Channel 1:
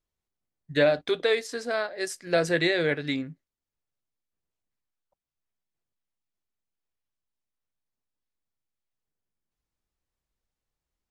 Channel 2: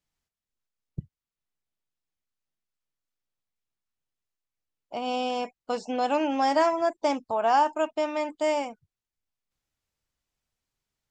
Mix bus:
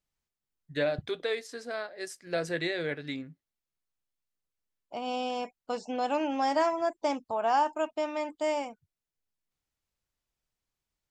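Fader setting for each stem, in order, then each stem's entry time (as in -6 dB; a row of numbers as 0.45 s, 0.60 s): -7.5 dB, -4.0 dB; 0.00 s, 0.00 s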